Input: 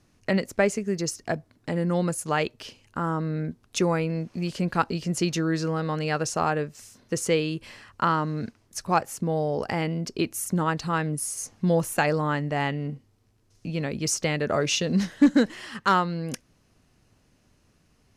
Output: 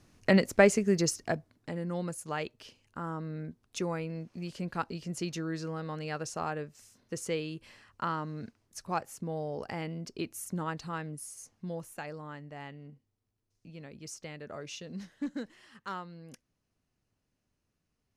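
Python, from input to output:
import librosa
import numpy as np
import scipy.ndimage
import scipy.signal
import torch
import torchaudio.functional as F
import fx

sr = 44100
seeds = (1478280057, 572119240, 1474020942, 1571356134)

y = fx.gain(x, sr, db=fx.line((0.99, 1.0), (1.79, -10.0), (10.75, -10.0), (11.99, -18.0)))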